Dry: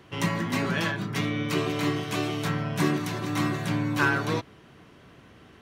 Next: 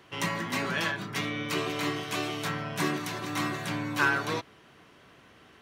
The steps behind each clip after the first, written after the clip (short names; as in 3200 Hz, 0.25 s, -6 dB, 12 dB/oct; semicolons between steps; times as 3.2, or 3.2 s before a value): low shelf 360 Hz -9.5 dB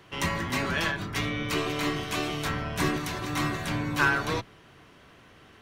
octaver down 1 oct, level -2 dB; gain +1.5 dB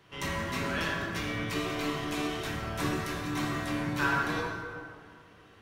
plate-style reverb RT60 2 s, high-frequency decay 0.55×, DRR -2 dB; gain -7.5 dB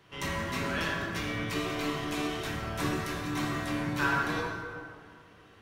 nothing audible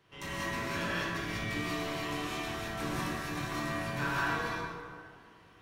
non-linear reverb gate 0.22 s rising, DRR -3.5 dB; gain -7.5 dB